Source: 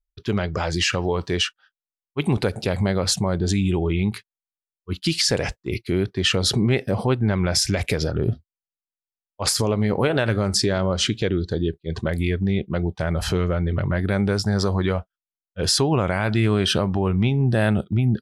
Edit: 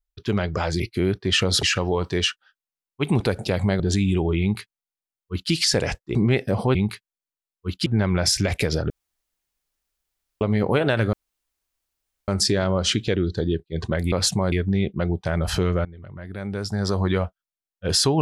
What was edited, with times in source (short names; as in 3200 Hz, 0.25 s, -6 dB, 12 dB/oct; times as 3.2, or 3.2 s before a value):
2.97–3.37 move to 12.26
3.98–5.09 copy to 7.15
5.72–6.55 move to 0.8
8.19–9.7 room tone
10.42 insert room tone 1.15 s
13.59–14.78 fade in quadratic, from -19.5 dB